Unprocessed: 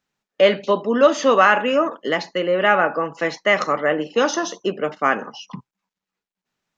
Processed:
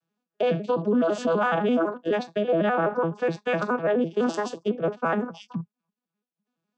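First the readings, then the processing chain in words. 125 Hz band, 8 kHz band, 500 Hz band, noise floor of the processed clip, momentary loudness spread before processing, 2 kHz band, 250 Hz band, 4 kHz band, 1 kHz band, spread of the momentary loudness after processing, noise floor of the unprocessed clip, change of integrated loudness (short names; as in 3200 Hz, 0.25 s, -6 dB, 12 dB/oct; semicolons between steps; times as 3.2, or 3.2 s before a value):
+3.0 dB, n/a, -5.5 dB, under -85 dBFS, 10 LU, -11.0 dB, -1.0 dB, -13.0 dB, -8.0 dB, 6 LU, under -85 dBFS, -6.5 dB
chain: arpeggiated vocoder major triad, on E3, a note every 84 ms; notch 2000 Hz, Q 5.8; limiter -15.5 dBFS, peak gain reduction 11.5 dB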